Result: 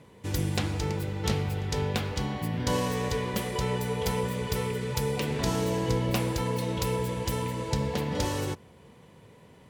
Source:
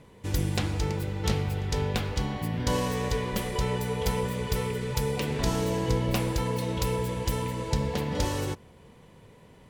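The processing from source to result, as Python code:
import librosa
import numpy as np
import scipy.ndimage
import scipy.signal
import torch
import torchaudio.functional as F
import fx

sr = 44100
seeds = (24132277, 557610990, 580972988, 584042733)

y = scipy.signal.sosfilt(scipy.signal.butter(2, 71.0, 'highpass', fs=sr, output='sos'), x)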